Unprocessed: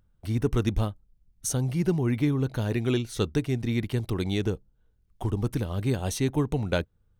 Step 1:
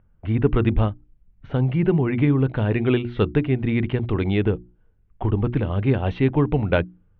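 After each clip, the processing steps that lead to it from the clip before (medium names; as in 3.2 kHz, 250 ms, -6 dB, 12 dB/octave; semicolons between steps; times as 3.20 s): steep low-pass 3 kHz 36 dB/octave; hum notches 60/120/180/240/300/360 Hz; level-controlled noise filter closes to 2.3 kHz, open at -22.5 dBFS; trim +7 dB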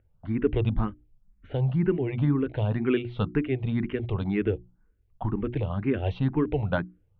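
barber-pole phaser +2 Hz; trim -3 dB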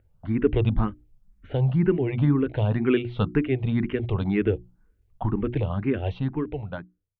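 fade out at the end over 1.60 s; trim +3 dB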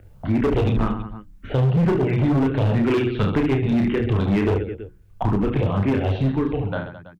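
reverse bouncing-ball echo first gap 30 ms, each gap 1.4×, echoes 5; overload inside the chain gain 19.5 dB; three bands compressed up and down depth 40%; trim +4 dB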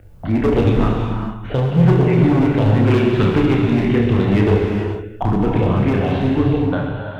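reverberation, pre-delay 3 ms, DRR 1.5 dB; trim +2.5 dB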